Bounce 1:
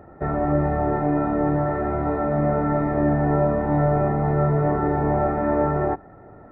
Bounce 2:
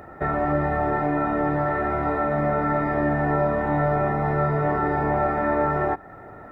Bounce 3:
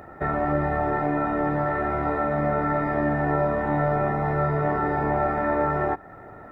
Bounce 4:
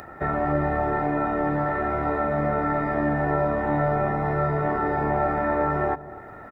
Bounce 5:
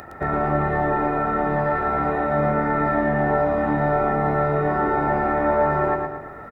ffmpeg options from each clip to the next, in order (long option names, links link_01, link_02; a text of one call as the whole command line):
ffmpeg -i in.wav -filter_complex "[0:a]tiltshelf=frequency=1200:gain=-7.5,asplit=2[link_01][link_02];[link_02]acompressor=threshold=-33dB:ratio=6,volume=3dB[link_03];[link_01][link_03]amix=inputs=2:normalize=0" out.wav
ffmpeg -i in.wav -af "tremolo=f=74:d=0.261" out.wav
ffmpeg -i in.wav -filter_complex "[0:a]acrossover=split=1100[link_01][link_02];[link_01]aecho=1:1:248:0.178[link_03];[link_02]acompressor=mode=upward:threshold=-40dB:ratio=2.5[link_04];[link_03][link_04]amix=inputs=2:normalize=0" out.wav
ffmpeg -i in.wav -af "aecho=1:1:114|228|342|456|570|684:0.631|0.278|0.122|0.0537|0.0236|0.0104,volume=1.5dB" out.wav